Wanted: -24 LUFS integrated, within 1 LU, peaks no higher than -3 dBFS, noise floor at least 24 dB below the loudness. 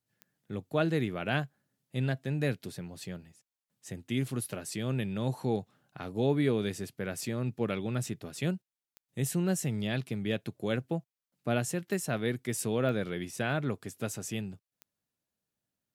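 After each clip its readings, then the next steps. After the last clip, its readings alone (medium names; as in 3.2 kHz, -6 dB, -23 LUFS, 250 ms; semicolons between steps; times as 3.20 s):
clicks found 5; loudness -33.0 LUFS; peak level -14.0 dBFS; loudness target -24.0 LUFS
-> de-click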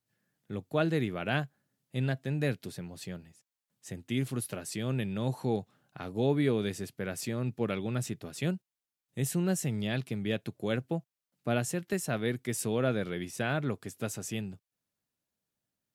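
clicks found 0; loudness -33.0 LUFS; peak level -14.0 dBFS; loudness target -24.0 LUFS
-> trim +9 dB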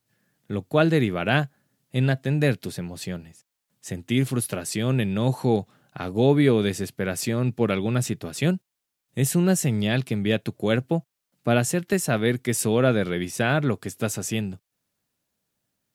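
loudness -24.0 LUFS; peak level -5.0 dBFS; noise floor -82 dBFS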